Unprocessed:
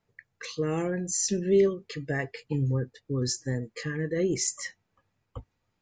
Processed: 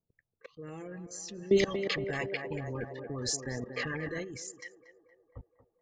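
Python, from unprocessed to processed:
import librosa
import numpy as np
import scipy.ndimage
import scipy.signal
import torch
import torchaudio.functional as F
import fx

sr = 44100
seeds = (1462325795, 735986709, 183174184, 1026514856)

y = fx.dereverb_blind(x, sr, rt60_s=0.56)
y = fx.env_lowpass(y, sr, base_hz=540.0, full_db=-25.5)
y = fx.level_steps(y, sr, step_db=23)
y = fx.echo_banded(y, sr, ms=233, feedback_pct=75, hz=710.0, wet_db=-8.5)
y = fx.spectral_comp(y, sr, ratio=2.0, at=(1.56, 4.23), fade=0.02)
y = y * librosa.db_to_amplitude(3.0)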